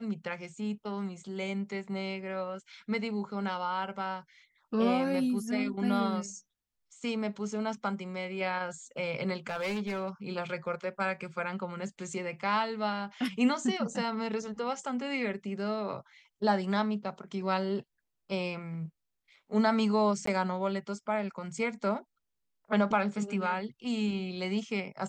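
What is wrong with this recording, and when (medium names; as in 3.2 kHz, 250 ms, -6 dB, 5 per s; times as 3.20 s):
9.49–10.09 s: clipped -29.5 dBFS
20.26–20.27 s: dropout 14 ms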